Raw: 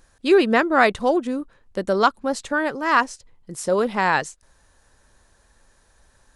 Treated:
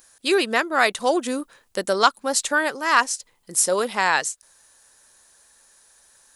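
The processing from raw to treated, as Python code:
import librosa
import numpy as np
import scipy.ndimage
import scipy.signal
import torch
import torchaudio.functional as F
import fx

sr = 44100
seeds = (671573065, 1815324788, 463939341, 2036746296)

y = fx.riaa(x, sr, side='recording')
y = fx.rider(y, sr, range_db=5, speed_s=0.5)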